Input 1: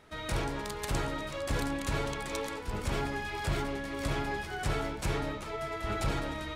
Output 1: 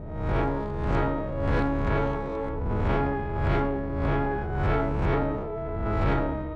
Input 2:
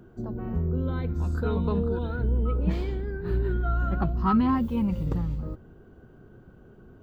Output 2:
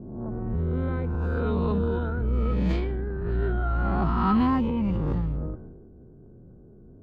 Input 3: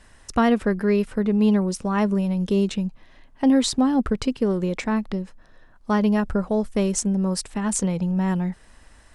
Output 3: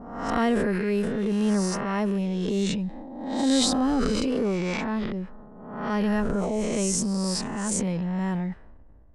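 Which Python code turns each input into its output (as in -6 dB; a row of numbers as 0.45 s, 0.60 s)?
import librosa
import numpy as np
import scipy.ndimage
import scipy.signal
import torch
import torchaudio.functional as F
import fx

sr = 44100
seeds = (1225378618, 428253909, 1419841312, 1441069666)

y = fx.spec_swells(x, sr, rise_s=1.14)
y = fx.env_lowpass(y, sr, base_hz=400.0, full_db=-16.0)
y = fx.transient(y, sr, attack_db=-7, sustain_db=6)
y = y * 10.0 ** (-26 / 20.0) / np.sqrt(np.mean(np.square(y)))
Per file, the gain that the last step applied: +5.5 dB, -0.5 dB, -5.0 dB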